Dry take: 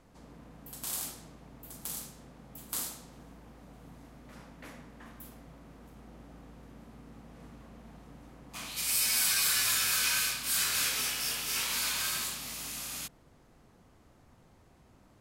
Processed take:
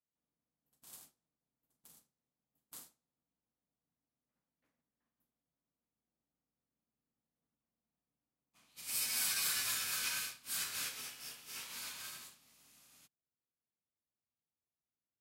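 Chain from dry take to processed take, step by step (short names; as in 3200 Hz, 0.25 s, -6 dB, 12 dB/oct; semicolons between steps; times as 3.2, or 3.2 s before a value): HPF 81 Hz 12 dB/oct; upward expander 2.5:1, over -51 dBFS; gain -6.5 dB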